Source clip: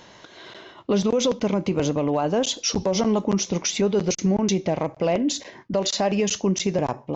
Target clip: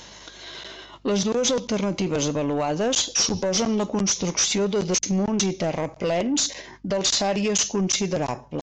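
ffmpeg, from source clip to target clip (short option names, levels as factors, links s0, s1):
-af "atempo=0.83,crystalizer=i=3.5:c=0,aresample=16000,asoftclip=type=tanh:threshold=0.141,aresample=44100,aeval=exprs='val(0)+0.00178*(sin(2*PI*50*n/s)+sin(2*PI*2*50*n/s)/2+sin(2*PI*3*50*n/s)/3+sin(2*PI*4*50*n/s)/4+sin(2*PI*5*50*n/s)/5)':c=same"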